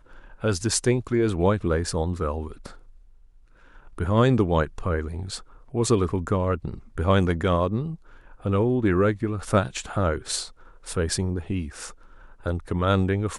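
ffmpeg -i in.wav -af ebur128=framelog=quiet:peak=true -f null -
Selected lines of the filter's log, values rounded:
Integrated loudness:
  I:         -24.9 LUFS
  Threshold: -35.8 LUFS
Loudness range:
  LRA:         3.6 LU
  Threshold: -45.8 LUFS
  LRA low:   -27.9 LUFS
  LRA high:  -24.3 LUFS
True peak:
  Peak:       -6.9 dBFS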